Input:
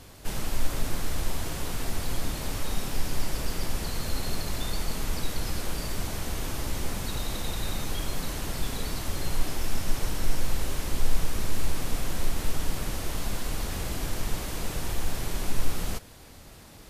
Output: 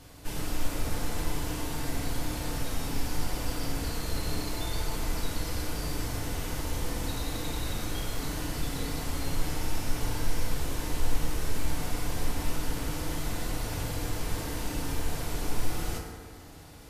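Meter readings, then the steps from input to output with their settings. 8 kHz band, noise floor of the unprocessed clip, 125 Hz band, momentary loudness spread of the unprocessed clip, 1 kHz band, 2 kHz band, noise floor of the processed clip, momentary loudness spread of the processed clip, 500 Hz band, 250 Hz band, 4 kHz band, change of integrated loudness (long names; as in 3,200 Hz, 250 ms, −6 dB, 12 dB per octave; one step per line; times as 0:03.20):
−2.0 dB, −48 dBFS, 0.0 dB, 1 LU, 0.0 dB, −1.0 dB, −46 dBFS, 1 LU, 0.0 dB, +1.0 dB, −2.0 dB, −1.0 dB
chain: feedback delay network reverb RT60 1.8 s, low-frequency decay 0.9×, high-frequency decay 0.5×, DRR −1.5 dB
level −4.5 dB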